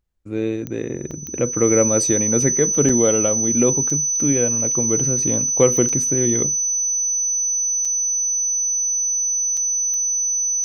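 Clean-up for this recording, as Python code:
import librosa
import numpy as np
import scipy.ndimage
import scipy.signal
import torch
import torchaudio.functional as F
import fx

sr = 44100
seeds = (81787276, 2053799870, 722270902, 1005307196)

y = fx.fix_declick_ar(x, sr, threshold=10.0)
y = fx.notch(y, sr, hz=6000.0, q=30.0)
y = fx.fix_interpolate(y, sr, at_s=(1.11, 2.89, 3.9, 5.89, 7.85, 9.57), length_ms=4.2)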